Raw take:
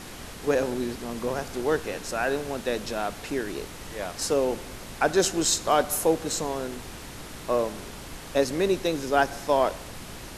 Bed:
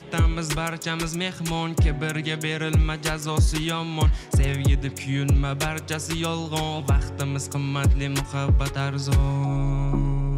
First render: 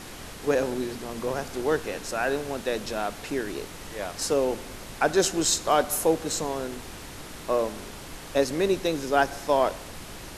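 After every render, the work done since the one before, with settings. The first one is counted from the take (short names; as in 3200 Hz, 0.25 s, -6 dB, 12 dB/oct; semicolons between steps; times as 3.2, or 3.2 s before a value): de-hum 60 Hz, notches 4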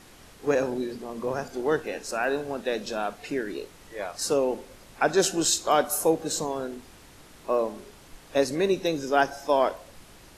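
noise print and reduce 10 dB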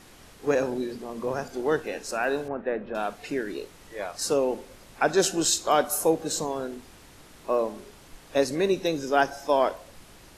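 2.48–2.95 inverse Chebyshev low-pass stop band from 10000 Hz, stop band 80 dB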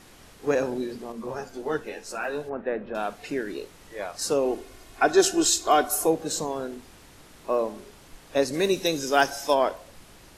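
1.12–2.53 ensemble effect; 4.45–6.07 comb 2.8 ms; 8.53–9.53 high shelf 4100 Hz -> 2200 Hz +11 dB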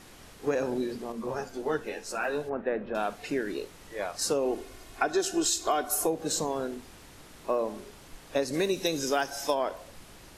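compressor 10:1, threshold -23 dBFS, peak gain reduction 11 dB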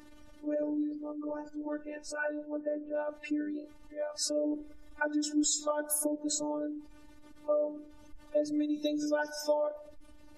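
spectral contrast raised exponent 1.9; robotiser 297 Hz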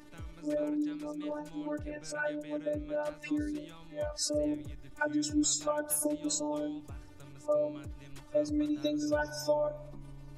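add bed -26 dB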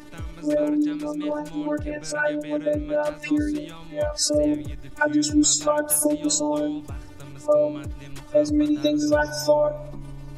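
gain +10.5 dB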